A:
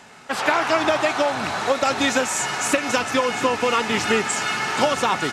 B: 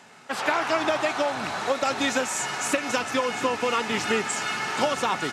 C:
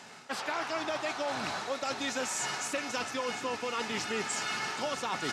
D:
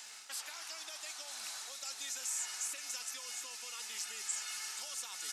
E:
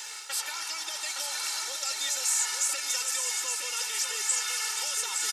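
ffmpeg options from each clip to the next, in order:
-af "highpass=99,volume=0.596"
-af "equalizer=f=5000:w=1.4:g=5,areverse,acompressor=threshold=0.0282:ratio=6,areverse"
-filter_complex "[0:a]acrossover=split=3200|6700[s0][s1][s2];[s0]acompressor=threshold=0.00708:ratio=4[s3];[s1]acompressor=threshold=0.002:ratio=4[s4];[s2]acompressor=threshold=0.00447:ratio=4[s5];[s3][s4][s5]amix=inputs=3:normalize=0,aderivative,volume=2.37"
-af "aecho=1:1:2.2:0.83,aecho=1:1:867:0.531,volume=2.66"

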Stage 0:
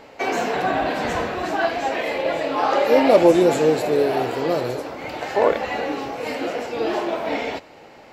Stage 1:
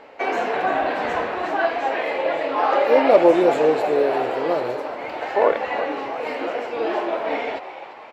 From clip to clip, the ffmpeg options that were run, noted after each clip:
-filter_complex "[0:a]bass=f=250:g=-12,treble=f=4000:g=-14,asplit=2[s0][s1];[s1]asplit=5[s2][s3][s4][s5][s6];[s2]adelay=347,afreqshift=91,volume=0.224[s7];[s3]adelay=694,afreqshift=182,volume=0.115[s8];[s4]adelay=1041,afreqshift=273,volume=0.0582[s9];[s5]adelay=1388,afreqshift=364,volume=0.0299[s10];[s6]adelay=1735,afreqshift=455,volume=0.0151[s11];[s7][s8][s9][s10][s11]amix=inputs=5:normalize=0[s12];[s0][s12]amix=inputs=2:normalize=0,volume=1.12"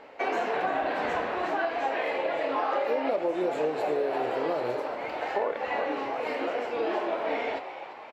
-filter_complex "[0:a]acompressor=threshold=0.1:ratio=12,asplit=2[s0][s1];[s1]adelay=33,volume=0.251[s2];[s0][s2]amix=inputs=2:normalize=0,volume=0.631"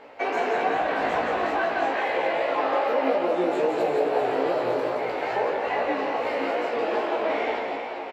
-filter_complex "[0:a]asplit=2[s0][s1];[s1]aecho=0:1:170|391|678.3|1052|1537:0.631|0.398|0.251|0.158|0.1[s2];[s0][s2]amix=inputs=2:normalize=0,flanger=delay=16:depth=2.8:speed=2.4,volume=1.78"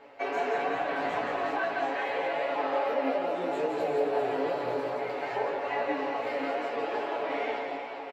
-af "aecho=1:1:7.1:0.65,volume=0.447"

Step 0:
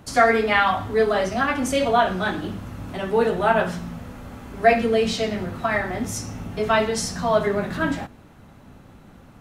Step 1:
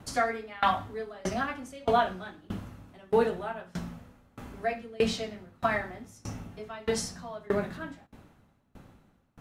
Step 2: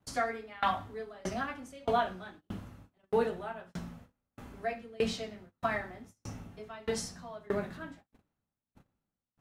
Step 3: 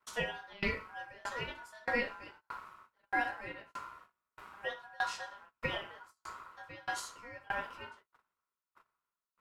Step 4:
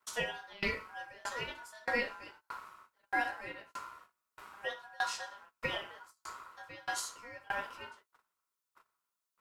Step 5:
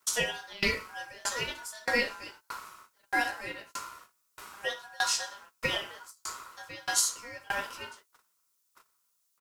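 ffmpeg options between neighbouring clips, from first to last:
-af "aeval=exprs='val(0)*pow(10,-27*if(lt(mod(1.6*n/s,1),2*abs(1.6)/1000),1-mod(1.6*n/s,1)/(2*abs(1.6)/1000),(mod(1.6*n/s,1)-2*abs(1.6)/1000)/(1-2*abs(1.6)/1000))/20)':c=same,volume=0.841"
-af "agate=range=0.0891:threshold=0.00398:ratio=16:detection=peak,volume=0.596"
-af "aeval=exprs='val(0)*sin(2*PI*1200*n/s)':c=same,volume=0.841"
-af "bass=f=250:g=-4,treble=f=4000:g=6"
-af "firequalizer=gain_entry='entry(400,0);entry(780,-3);entry(5700,9)':delay=0.05:min_phase=1,volume=1.88"

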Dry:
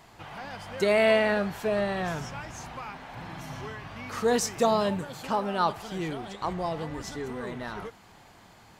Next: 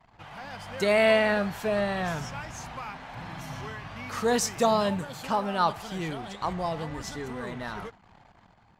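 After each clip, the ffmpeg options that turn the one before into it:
-af "equalizer=f=370:t=o:w=0.84:g=-4.5,anlmdn=0.00158,dynaudnorm=f=150:g=7:m=1.5,volume=0.794"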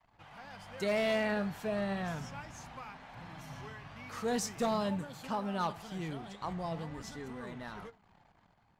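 -af "adynamicequalizer=threshold=0.0112:dfrequency=200:dqfactor=1:tfrequency=200:tqfactor=1:attack=5:release=100:ratio=0.375:range=2.5:mode=boostabove:tftype=bell,flanger=delay=3.4:depth=3.8:regen=85:speed=0.4:shape=sinusoidal,asoftclip=type=hard:threshold=0.0841,volume=0.596"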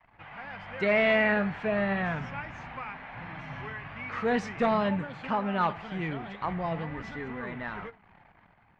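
-af "lowpass=f=2200:t=q:w=2.1,volume=1.88"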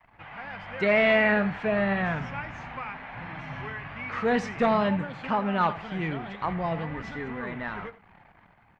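-af "aecho=1:1:85:0.119,volume=1.33"

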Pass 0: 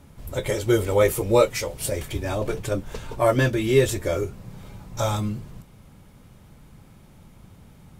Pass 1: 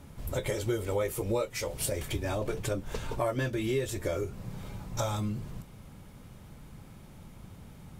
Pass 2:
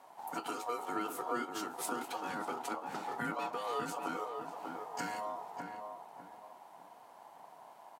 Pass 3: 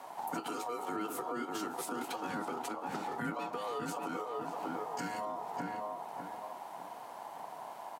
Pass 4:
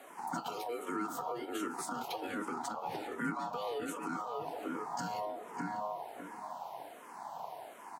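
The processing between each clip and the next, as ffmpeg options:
-af "acompressor=threshold=0.0355:ratio=4"
-filter_complex "[0:a]aeval=exprs='val(0)*sin(2*PI*840*n/s)':c=same,highpass=f=140:w=0.5412,highpass=f=140:w=1.3066,asplit=2[s0][s1];[s1]adelay=597,lowpass=f=1300:p=1,volume=0.631,asplit=2[s2][s3];[s3]adelay=597,lowpass=f=1300:p=1,volume=0.35,asplit=2[s4][s5];[s5]adelay=597,lowpass=f=1300:p=1,volume=0.35,asplit=2[s6][s7];[s7]adelay=597,lowpass=f=1300:p=1,volume=0.35[s8];[s0][s2][s4][s6][s8]amix=inputs=5:normalize=0,volume=0.562"
-filter_complex "[0:a]alimiter=level_in=2.82:limit=0.0631:level=0:latency=1:release=247,volume=0.355,acrossover=split=400[s0][s1];[s1]acompressor=threshold=0.00398:ratio=3[s2];[s0][s2]amix=inputs=2:normalize=0,volume=2.99"
-filter_complex "[0:a]asplit=2[s0][s1];[s1]afreqshift=-1.3[s2];[s0][s2]amix=inputs=2:normalize=1,volume=1.33"

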